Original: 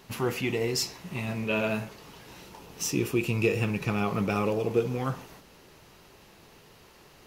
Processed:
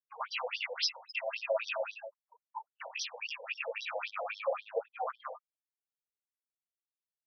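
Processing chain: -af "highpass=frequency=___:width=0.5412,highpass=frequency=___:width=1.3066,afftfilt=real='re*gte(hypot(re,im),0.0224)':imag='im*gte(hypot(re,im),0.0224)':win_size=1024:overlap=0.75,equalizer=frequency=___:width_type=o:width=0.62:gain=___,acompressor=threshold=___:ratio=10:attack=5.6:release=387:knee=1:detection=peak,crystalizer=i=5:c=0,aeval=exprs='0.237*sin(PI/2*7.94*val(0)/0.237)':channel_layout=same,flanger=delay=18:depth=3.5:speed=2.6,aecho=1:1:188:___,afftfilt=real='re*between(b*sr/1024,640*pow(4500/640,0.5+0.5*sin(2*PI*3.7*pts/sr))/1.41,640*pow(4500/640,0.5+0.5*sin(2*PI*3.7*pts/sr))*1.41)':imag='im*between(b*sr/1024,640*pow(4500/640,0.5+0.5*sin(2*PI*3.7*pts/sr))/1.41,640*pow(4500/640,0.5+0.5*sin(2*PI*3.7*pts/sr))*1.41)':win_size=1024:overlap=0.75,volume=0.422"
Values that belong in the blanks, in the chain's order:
69, 69, 590, 10.5, 0.0178, 0.668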